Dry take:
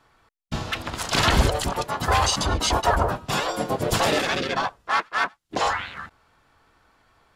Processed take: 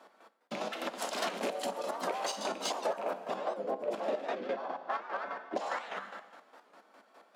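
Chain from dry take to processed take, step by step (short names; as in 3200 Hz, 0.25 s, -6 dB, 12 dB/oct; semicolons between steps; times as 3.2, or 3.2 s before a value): rattling part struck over -20 dBFS, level -12 dBFS; 3.25–5.56 LPF 1300 Hz 6 dB/oct; two-slope reverb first 0.9 s, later 2.8 s, from -25 dB, DRR 5 dB; soft clip -15 dBFS, distortion -14 dB; chopper 4.9 Hz, depth 60%, duty 35%; steep high-pass 190 Hz 48 dB/oct; bell 590 Hz +11 dB 0.92 oct; compressor 3:1, threshold -36 dBFS, peak gain reduction 18 dB; record warp 78 rpm, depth 160 cents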